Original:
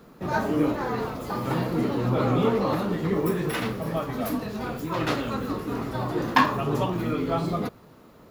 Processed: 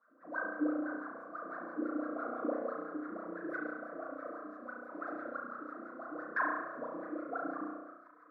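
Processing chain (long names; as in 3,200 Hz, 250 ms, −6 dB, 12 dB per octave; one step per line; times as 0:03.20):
low-shelf EQ 220 Hz −4 dB
on a send: echo with a time of its own for lows and highs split 1,200 Hz, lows 105 ms, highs 565 ms, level −12 dB
on the sum: LFO wah 6 Hz 300–1,600 Hz, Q 16
phaser with its sweep stopped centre 590 Hz, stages 8
spring reverb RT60 1 s, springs 33 ms, chirp 65 ms, DRR −1.5 dB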